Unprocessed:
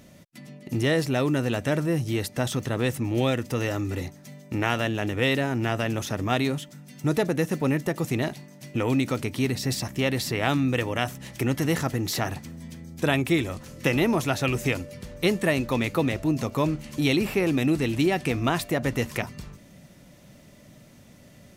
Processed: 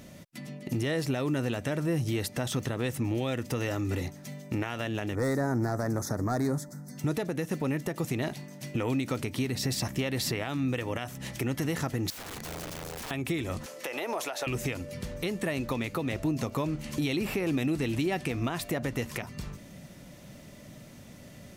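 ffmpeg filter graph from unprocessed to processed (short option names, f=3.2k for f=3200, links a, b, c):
-filter_complex "[0:a]asettb=1/sr,asplit=3[a][b][c];[a]atrim=end=5.154[d];[b]atrim=start=5.15:end=6.98,asetpts=PTS-STARTPTS,afade=t=in:d=0.004:c=qsin,afade=t=out:st=1.826:d=0.004:c=qsin,volume=19.5dB,asoftclip=hard,volume=-19.5dB,asuperstop=centerf=2900:order=4:qfactor=0.87[e];[c]atrim=start=6.976[f];[d][e]acrossfade=d=0.004:c1=hsin:c2=qsin[g];[g][f]acrossfade=d=0.004:c1=qsin:c2=hsin,asettb=1/sr,asplit=3[h][i][j];[h]atrim=end=12.104[k];[i]atrim=start=12.1:end=13.11,asetpts=PTS-STARTPTS,afade=t=in:d=0.004:c=qsin,afade=t=out:st=1.006:d=0.004:c=qsin,acompressor=threshold=-35dB:ratio=5:attack=3.2:release=140:knee=1:detection=peak,aeval=exprs='(mod(66.8*val(0)+1,2)-1)/66.8':c=same[l];[j]atrim=start=13.106[m];[k][l]acrossfade=d=0.004:c1=hsin:c2=qsin[n];[n][m]acrossfade=d=0.004:c1=qsin:c2=hsin,asettb=1/sr,asplit=3[o][p][q];[o]atrim=end=13.664[r];[p]atrim=start=13.66:end=14.47,asetpts=PTS-STARTPTS,afade=t=in:d=0.004:c=qsin,afade=t=out:st=0.806:d=0.004:c=qsin,highpass=f=590:t=q:w=1.6,acompressor=threshold=-23dB:ratio=6:attack=3.2:release=140:knee=1:detection=peak[s];[q]atrim=start=14.466[t];[r][s]acrossfade=d=0.004:c1=hsin:c2=qsin[u];[u][t]acrossfade=d=0.004:c1=qsin:c2=hsin,acompressor=threshold=-26dB:ratio=3,alimiter=limit=-23dB:level=0:latency=1:release=287,volume=2.5dB"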